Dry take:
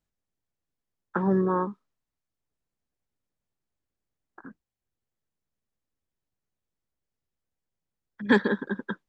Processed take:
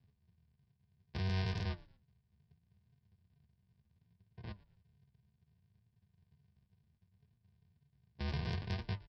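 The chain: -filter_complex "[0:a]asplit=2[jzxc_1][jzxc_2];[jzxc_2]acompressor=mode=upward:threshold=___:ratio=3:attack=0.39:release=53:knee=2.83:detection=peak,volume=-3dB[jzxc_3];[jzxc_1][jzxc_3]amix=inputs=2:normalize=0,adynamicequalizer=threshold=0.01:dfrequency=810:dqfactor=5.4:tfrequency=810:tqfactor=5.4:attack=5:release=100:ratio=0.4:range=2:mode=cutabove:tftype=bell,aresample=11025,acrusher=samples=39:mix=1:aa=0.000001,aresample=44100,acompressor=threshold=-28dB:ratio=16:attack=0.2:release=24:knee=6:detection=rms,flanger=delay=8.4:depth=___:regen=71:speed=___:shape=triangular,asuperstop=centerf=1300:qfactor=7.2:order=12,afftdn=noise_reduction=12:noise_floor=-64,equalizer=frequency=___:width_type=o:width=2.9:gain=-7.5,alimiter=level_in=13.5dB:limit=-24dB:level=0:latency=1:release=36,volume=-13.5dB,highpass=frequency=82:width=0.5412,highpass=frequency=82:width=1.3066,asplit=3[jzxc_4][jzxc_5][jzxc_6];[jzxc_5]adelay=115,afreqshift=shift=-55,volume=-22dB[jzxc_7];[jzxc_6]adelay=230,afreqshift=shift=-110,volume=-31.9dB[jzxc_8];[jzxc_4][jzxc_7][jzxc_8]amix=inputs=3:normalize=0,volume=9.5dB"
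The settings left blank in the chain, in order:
-42dB, 7.6, 0.68, 430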